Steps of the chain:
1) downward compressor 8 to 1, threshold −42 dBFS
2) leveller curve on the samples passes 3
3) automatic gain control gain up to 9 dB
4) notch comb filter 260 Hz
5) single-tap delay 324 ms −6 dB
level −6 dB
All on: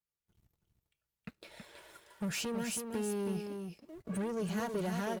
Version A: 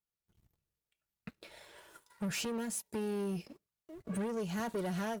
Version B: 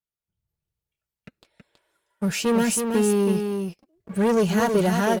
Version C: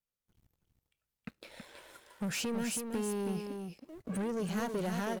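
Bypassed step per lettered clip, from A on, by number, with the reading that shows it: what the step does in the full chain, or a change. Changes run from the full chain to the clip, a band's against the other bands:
5, change in crest factor −2.0 dB
1, average gain reduction 11.5 dB
4, change in crest factor −3.0 dB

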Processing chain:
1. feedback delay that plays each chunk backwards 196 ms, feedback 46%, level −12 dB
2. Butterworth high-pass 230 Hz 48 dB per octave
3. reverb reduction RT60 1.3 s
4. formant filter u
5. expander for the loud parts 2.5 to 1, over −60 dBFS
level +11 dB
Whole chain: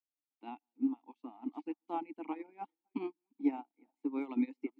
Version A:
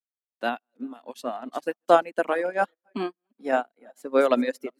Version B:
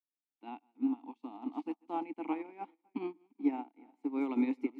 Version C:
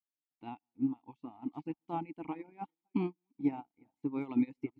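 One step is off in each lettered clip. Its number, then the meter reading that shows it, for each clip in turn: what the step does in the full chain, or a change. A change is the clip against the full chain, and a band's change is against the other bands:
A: 4, 250 Hz band −19.0 dB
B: 3, change in momentary loudness spread +2 LU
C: 2, change in integrated loudness +1.5 LU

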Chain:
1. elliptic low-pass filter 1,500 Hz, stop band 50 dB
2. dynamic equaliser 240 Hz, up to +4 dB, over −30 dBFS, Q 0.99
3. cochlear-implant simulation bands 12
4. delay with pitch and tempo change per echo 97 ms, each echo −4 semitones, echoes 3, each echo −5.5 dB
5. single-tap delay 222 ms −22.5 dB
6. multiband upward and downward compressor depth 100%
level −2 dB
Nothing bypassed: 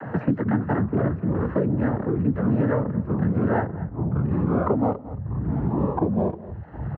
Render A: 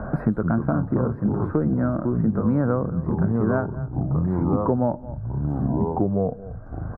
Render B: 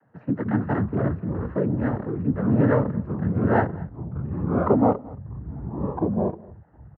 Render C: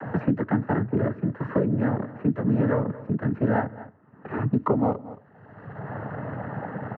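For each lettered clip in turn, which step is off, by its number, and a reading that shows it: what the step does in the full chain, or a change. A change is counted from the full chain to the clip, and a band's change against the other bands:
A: 3, 2 kHz band −2.5 dB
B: 6, change in crest factor +2.5 dB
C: 4, change in crest factor +2.0 dB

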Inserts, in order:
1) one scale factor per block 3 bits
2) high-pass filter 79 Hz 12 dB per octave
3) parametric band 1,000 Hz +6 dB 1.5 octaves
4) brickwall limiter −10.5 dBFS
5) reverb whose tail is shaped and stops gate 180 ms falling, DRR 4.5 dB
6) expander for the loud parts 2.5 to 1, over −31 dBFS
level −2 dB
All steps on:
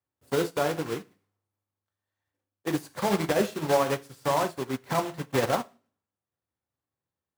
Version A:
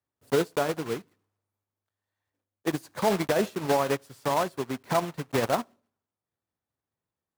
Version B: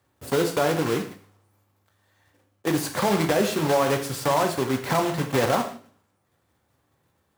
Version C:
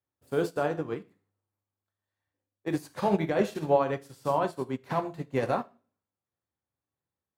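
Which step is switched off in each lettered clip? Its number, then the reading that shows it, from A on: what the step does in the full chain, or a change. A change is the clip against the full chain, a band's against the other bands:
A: 5, change in crest factor −2.5 dB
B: 6, 500 Hz band −1.5 dB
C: 1, distortion level −10 dB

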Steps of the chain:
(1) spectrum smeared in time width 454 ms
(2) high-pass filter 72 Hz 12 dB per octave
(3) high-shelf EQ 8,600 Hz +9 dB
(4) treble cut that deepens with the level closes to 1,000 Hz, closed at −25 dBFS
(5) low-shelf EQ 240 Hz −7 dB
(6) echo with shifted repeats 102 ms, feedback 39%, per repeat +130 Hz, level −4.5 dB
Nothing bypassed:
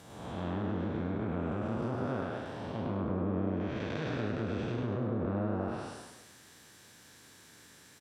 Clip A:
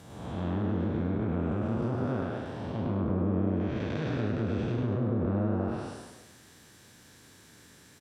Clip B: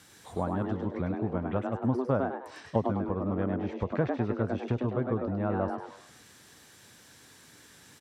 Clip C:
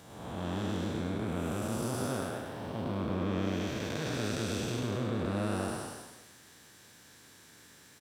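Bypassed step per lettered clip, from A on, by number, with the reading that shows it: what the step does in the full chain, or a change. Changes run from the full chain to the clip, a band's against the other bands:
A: 5, 125 Hz band +5.0 dB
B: 1, 4 kHz band −6.0 dB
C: 4, 4 kHz band +8.0 dB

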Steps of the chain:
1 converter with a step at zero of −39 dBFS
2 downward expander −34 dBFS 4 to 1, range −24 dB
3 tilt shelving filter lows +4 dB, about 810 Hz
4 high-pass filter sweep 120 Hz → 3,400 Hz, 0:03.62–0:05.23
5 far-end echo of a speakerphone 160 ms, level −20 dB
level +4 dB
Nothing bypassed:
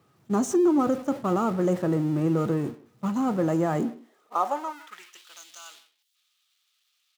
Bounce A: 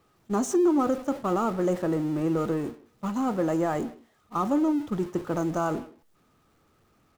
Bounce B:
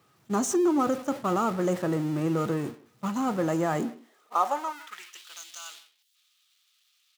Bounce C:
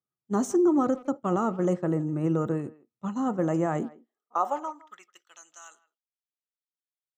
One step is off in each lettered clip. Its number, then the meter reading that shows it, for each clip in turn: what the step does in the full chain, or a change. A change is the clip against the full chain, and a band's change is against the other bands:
4, change in crest factor −1.5 dB
3, 125 Hz band −5.0 dB
1, distortion level −14 dB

